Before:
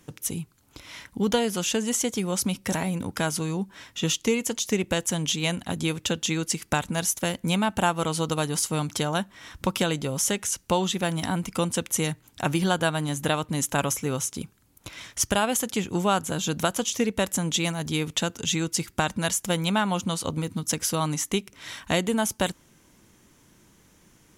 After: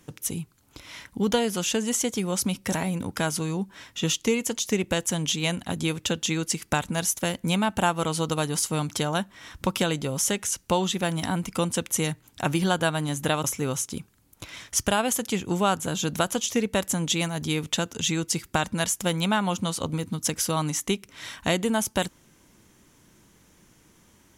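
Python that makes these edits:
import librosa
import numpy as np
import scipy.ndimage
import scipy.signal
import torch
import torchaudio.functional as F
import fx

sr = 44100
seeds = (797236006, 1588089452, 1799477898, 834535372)

y = fx.edit(x, sr, fx.cut(start_s=13.44, length_s=0.44), tone=tone)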